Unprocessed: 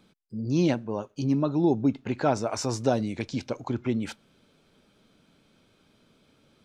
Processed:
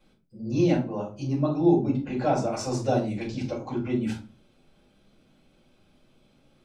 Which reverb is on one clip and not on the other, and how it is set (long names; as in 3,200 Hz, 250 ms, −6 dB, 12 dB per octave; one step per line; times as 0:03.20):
rectangular room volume 180 cubic metres, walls furnished, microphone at 6.1 metres
level −12.5 dB